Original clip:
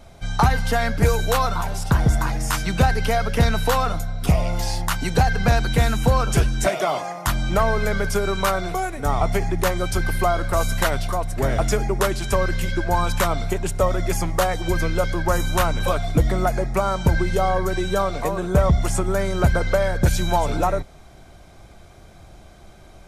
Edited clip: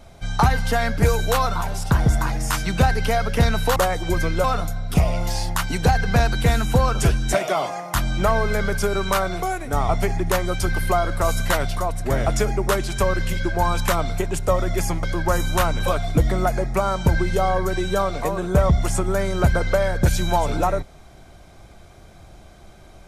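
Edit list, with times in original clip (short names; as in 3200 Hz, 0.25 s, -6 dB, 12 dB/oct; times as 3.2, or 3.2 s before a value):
14.35–15.03 move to 3.76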